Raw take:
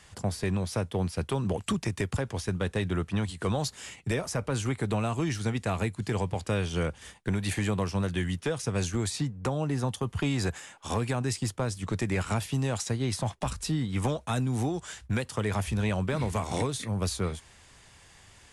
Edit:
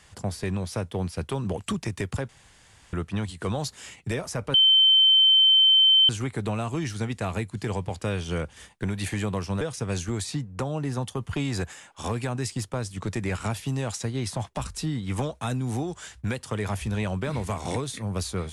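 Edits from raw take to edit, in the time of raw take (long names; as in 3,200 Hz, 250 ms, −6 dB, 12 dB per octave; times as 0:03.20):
0:02.29–0:02.93: fill with room tone
0:04.54: insert tone 3,090 Hz −14 dBFS 1.55 s
0:08.06–0:08.47: remove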